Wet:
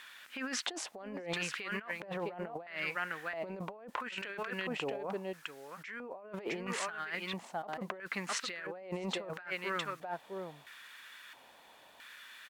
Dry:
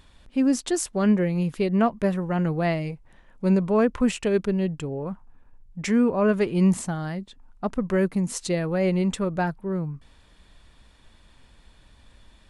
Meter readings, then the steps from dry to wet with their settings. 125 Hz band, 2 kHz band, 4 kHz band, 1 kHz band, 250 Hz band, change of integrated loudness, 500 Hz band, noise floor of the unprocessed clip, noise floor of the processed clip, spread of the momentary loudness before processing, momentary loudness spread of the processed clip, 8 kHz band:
-22.0 dB, -2.5 dB, -1.5 dB, -8.5 dB, -21.5 dB, -14.5 dB, -15.5 dB, -55 dBFS, -59 dBFS, 12 LU, 14 LU, -9.5 dB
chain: weighting filter D; on a send: echo 0.658 s -9.5 dB; on the sum: added noise violet -44 dBFS; LFO band-pass square 0.75 Hz 750–1500 Hz; negative-ratio compressor -43 dBFS, ratio -1; gain +2 dB

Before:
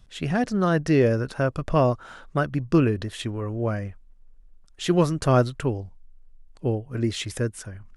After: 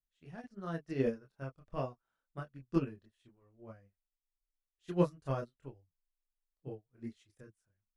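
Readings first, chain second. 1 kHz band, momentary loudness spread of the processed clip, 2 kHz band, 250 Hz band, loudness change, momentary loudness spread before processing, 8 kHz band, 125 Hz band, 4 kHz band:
-17.0 dB, 22 LU, -20.0 dB, -15.0 dB, -14.0 dB, 11 LU, under -25 dB, -17.5 dB, -24.5 dB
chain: chorus voices 6, 0.31 Hz, delay 26 ms, depth 4.6 ms; upward expander 2.5:1, over -38 dBFS; gain -6.5 dB

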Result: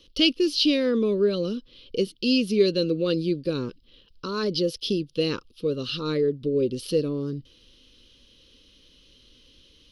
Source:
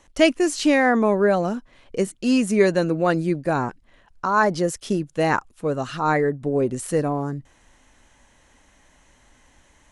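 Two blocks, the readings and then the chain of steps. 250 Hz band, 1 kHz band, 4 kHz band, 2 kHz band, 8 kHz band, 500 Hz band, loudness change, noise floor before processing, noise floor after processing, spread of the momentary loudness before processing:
-3.0 dB, -18.5 dB, +7.0 dB, -10.5 dB, -10.0 dB, -3.0 dB, -3.5 dB, -58 dBFS, -58 dBFS, 9 LU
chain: EQ curve 170 Hz 0 dB, 510 Hz +5 dB, 740 Hz -28 dB, 1200 Hz -7 dB, 1900 Hz -14 dB, 3000 Hz +13 dB, 5000 Hz +13 dB, 7400 Hz -18 dB, 13000 Hz +6 dB; in parallel at -2 dB: compressor, threshold -26 dBFS, peak gain reduction 16.5 dB; on the sum: gain -7 dB

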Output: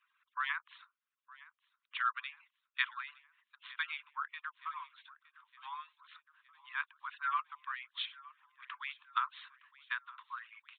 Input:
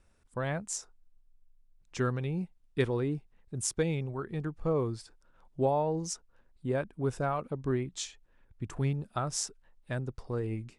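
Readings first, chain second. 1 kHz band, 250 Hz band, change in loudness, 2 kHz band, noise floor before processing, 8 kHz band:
-1.0 dB, under -40 dB, -6.0 dB, +5.0 dB, -66 dBFS, under -40 dB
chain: median-filter separation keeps percussive; steep high-pass 1000 Hz 96 dB/oct; on a send: feedback echo 0.914 s, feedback 52%, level -20.5 dB; on the sum: downsampling 8000 Hz; gain +6 dB

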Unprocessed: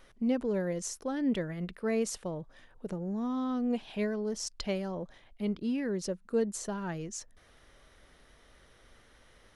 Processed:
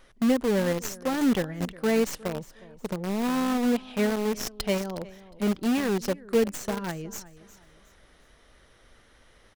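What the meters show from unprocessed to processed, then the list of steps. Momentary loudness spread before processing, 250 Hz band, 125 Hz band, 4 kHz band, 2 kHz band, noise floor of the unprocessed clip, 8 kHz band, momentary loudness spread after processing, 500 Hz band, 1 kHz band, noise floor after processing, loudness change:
10 LU, +6.0 dB, +5.0 dB, +8.0 dB, +9.5 dB, -61 dBFS, +3.0 dB, 12 LU, +6.5 dB, +9.0 dB, -59 dBFS, +6.5 dB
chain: tracing distortion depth 0.086 ms; feedback echo 0.361 s, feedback 32%, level -16.5 dB; in parallel at -4 dB: bit-crush 5-bit; on the sum: gain +2 dB

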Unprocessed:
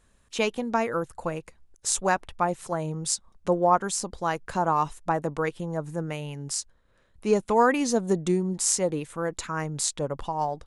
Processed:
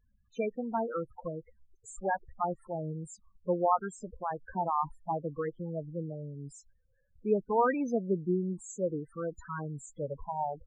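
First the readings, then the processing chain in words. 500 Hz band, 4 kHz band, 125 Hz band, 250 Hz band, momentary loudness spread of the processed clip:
-6.0 dB, under -30 dB, -6.5 dB, -6.5 dB, 13 LU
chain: resonant high shelf 2400 Hz -6 dB, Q 1.5; loudest bins only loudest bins 8; gain -5.5 dB

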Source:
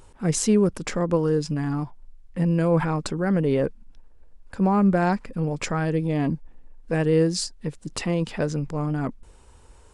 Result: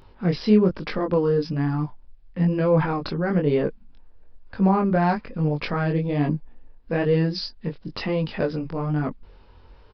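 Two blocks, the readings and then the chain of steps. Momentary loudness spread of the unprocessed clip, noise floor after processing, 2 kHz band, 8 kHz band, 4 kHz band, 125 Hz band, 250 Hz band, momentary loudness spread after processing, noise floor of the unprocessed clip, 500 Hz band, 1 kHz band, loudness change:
10 LU, -50 dBFS, +1.0 dB, under -25 dB, 0.0 dB, +0.5 dB, +0.5 dB, 12 LU, -51 dBFS, +1.0 dB, +1.5 dB, +0.5 dB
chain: downsampling 11025 Hz; chorus 1.1 Hz, delay 19.5 ms, depth 4.6 ms; gain +4 dB

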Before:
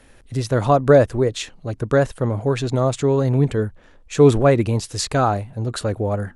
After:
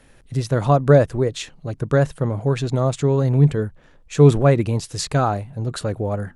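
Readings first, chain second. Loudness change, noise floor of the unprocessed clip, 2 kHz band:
0.0 dB, -50 dBFS, -2.0 dB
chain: bell 150 Hz +9.5 dB 0.27 oct; gain -2 dB

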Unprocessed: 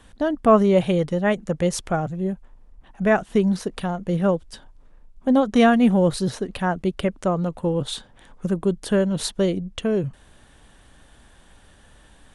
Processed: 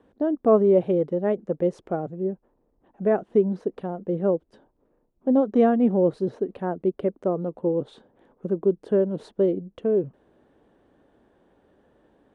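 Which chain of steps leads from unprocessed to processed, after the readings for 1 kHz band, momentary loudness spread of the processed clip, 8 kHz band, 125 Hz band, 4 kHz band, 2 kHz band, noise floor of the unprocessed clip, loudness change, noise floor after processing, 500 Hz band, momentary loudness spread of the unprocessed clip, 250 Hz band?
-7.0 dB, 11 LU, under -25 dB, -7.0 dB, under -20 dB, -14.5 dB, -53 dBFS, -2.0 dB, -69 dBFS, 0.0 dB, 11 LU, -3.5 dB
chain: band-pass 390 Hz, Q 1.7; gain +2.5 dB

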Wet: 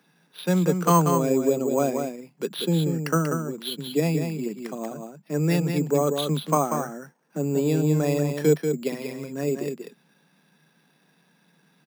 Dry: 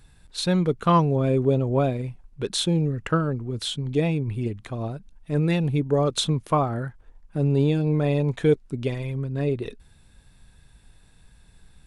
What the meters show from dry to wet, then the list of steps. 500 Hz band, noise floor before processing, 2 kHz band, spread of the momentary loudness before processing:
+1.0 dB, -56 dBFS, 0.0 dB, 11 LU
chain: steep high-pass 150 Hz 96 dB/oct; echo 0.188 s -6 dB; careless resampling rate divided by 6×, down filtered, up hold

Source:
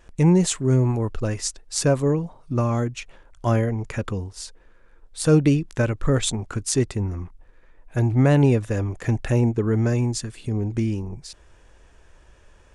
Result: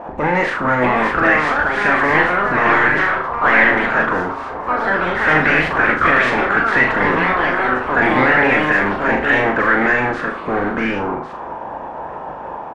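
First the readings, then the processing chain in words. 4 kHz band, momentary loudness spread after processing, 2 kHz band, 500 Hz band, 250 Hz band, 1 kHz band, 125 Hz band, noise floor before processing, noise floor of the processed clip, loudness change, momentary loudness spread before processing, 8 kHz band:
+4.5 dB, 14 LU, +24.5 dB, +6.0 dB, +1.5 dB, +19.5 dB, -8.5 dB, -53 dBFS, -30 dBFS, +7.5 dB, 13 LU, under -15 dB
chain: spectral limiter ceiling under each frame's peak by 23 dB; HPF 62 Hz; bell 100 Hz -12 dB 0.87 oct; notch 390 Hz, Q 12; limiter -13.5 dBFS, peak gain reduction 11 dB; power-law curve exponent 0.5; echoes that change speed 0.682 s, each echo +4 st, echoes 3; doubler 32 ms -14 dB; flutter echo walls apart 6.8 m, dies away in 0.41 s; envelope low-pass 730–1900 Hz up, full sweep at -14.5 dBFS

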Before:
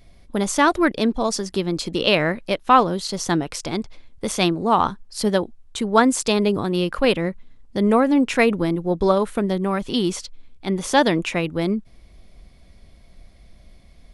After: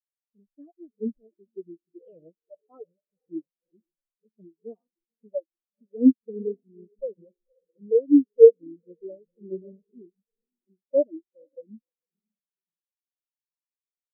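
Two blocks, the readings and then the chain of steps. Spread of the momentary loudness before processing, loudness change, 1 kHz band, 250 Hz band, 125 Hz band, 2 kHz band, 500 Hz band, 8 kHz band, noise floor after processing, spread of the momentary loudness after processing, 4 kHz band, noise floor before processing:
11 LU, -0.5 dB, under -40 dB, -6.0 dB, under -25 dB, under -40 dB, -2.0 dB, under -40 dB, under -85 dBFS, 24 LU, under -40 dB, -49 dBFS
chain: ten-band EQ 500 Hz +8 dB, 1000 Hz -10 dB, 2000 Hz -5 dB; diffused feedback echo 0.525 s, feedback 59%, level -9.5 dB; flange 0.18 Hz, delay 3.3 ms, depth 3.6 ms, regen +40%; spectral expander 4:1; gain +3 dB

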